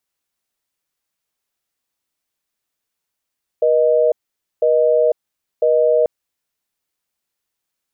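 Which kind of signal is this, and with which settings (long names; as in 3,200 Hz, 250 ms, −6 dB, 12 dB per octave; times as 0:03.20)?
call progress tone busy tone, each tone −14 dBFS 2.44 s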